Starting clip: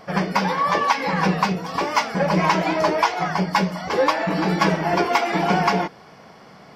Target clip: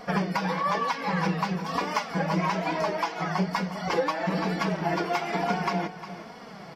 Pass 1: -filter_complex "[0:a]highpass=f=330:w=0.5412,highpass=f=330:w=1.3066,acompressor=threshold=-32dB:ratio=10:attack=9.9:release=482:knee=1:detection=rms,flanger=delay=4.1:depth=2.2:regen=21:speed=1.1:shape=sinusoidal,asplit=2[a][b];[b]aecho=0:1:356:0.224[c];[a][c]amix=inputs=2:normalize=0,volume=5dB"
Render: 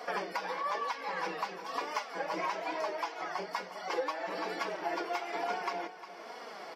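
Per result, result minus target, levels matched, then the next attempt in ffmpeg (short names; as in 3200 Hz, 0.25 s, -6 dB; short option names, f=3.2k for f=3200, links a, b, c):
250 Hz band -8.5 dB; compressor: peak gain reduction +7.5 dB
-filter_complex "[0:a]acompressor=threshold=-32dB:ratio=10:attack=9.9:release=482:knee=1:detection=rms,flanger=delay=4.1:depth=2.2:regen=21:speed=1.1:shape=sinusoidal,asplit=2[a][b];[b]aecho=0:1:356:0.224[c];[a][c]amix=inputs=2:normalize=0,volume=5dB"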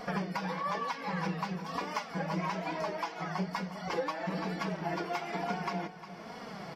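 compressor: peak gain reduction +7.5 dB
-filter_complex "[0:a]acompressor=threshold=-23.5dB:ratio=10:attack=9.9:release=482:knee=1:detection=rms,flanger=delay=4.1:depth=2.2:regen=21:speed=1.1:shape=sinusoidal,asplit=2[a][b];[b]aecho=0:1:356:0.224[c];[a][c]amix=inputs=2:normalize=0,volume=5dB"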